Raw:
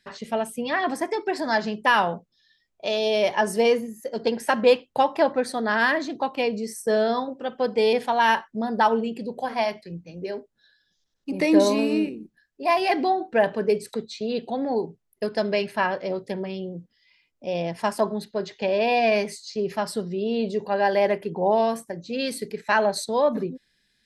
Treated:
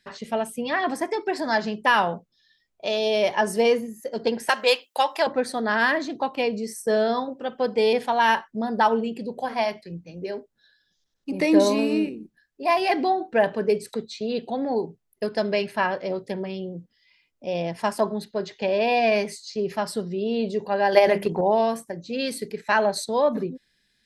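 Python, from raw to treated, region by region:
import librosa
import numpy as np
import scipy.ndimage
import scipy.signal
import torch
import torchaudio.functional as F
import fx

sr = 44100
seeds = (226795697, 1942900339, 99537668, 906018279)

y = fx.chain(x, sr, fx.highpass(hz=360.0, slope=12),
    fx.tilt_eq(slope=3.5), at=(4.49, 5.27))
y = fx.chain(y, sr, fx.high_shelf(hz=4000.0, db=7.5),
    fx.hum_notches(base_hz=50, count=4),
    fx.transient(attack_db=12, sustain_db=7), at=(20.92, 21.41))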